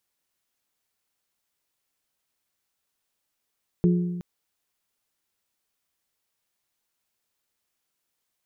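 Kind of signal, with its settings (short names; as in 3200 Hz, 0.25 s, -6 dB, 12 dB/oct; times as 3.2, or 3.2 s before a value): glass hit bell, length 0.37 s, lowest mode 176 Hz, modes 3, decay 1.38 s, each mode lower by 6.5 dB, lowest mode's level -15.5 dB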